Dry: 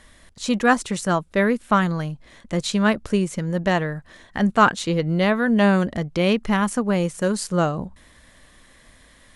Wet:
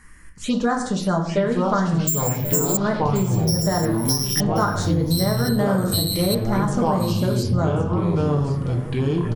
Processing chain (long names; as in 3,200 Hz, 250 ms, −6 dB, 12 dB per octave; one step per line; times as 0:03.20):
convolution reverb RT60 0.60 s, pre-delay 5 ms, DRR 1 dB
0:02.07–0:02.77: bad sample-rate conversion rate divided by 6×, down filtered, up zero stuff
phaser swept by the level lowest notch 600 Hz, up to 2,700 Hz, full sweep at −15 dBFS
delay with pitch and tempo change per echo 707 ms, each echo −5 semitones, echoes 2
downward compressor 4 to 1, threshold −19 dBFS, peak gain reduction 10.5 dB
single-tap delay 1,083 ms −14 dB
level +1.5 dB